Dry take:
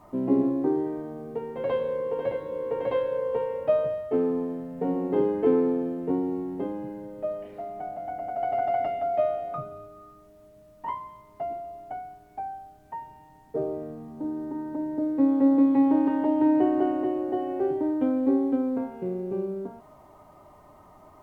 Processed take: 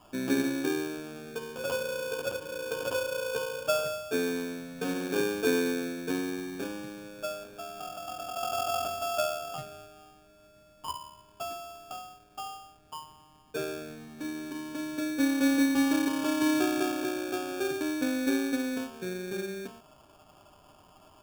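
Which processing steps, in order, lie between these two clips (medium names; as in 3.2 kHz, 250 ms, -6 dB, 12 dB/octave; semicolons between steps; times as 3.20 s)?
sample-rate reducer 2 kHz, jitter 0%; trim -5 dB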